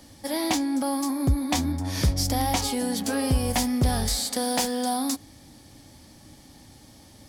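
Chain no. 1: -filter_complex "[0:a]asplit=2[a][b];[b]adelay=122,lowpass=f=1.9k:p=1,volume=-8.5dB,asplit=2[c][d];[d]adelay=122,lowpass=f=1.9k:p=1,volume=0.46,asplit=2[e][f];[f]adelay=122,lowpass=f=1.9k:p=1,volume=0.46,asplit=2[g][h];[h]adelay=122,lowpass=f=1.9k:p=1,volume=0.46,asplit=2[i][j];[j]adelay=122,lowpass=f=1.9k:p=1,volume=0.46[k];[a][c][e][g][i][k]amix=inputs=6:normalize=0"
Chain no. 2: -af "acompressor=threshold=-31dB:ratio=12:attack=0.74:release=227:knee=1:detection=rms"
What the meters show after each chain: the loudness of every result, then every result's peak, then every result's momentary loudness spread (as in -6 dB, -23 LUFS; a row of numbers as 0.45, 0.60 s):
-25.0, -37.5 LUFS; -10.5, -24.5 dBFS; 4, 13 LU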